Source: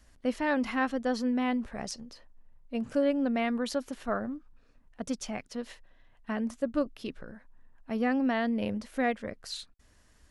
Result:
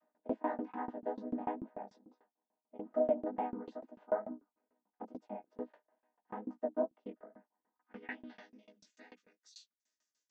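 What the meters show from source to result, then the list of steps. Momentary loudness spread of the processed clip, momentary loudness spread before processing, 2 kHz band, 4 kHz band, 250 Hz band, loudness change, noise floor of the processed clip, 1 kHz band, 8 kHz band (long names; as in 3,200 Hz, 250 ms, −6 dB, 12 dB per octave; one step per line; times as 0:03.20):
22 LU, 14 LU, −17.0 dB, below −20 dB, −13.5 dB, −8.5 dB, below −85 dBFS, −7.0 dB, below −20 dB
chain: channel vocoder with a chord as carrier minor triad, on G#3
chorus effect 2.3 Hz, delay 16 ms, depth 6.2 ms
band-pass filter sweep 780 Hz → 6,200 Hz, 0:07.70–0:08.42
shaped tremolo saw down 6.8 Hz, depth 100%
level +11.5 dB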